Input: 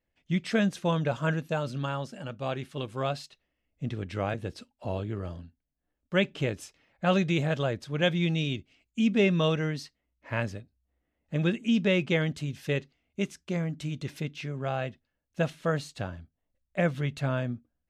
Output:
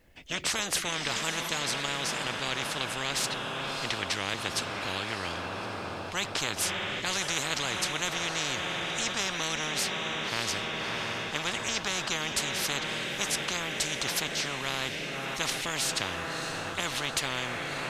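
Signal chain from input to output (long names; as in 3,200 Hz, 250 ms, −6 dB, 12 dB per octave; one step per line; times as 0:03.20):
tape wow and flutter 28 cents
feedback delay with all-pass diffusion 613 ms, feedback 62%, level −14 dB
every bin compressed towards the loudest bin 10 to 1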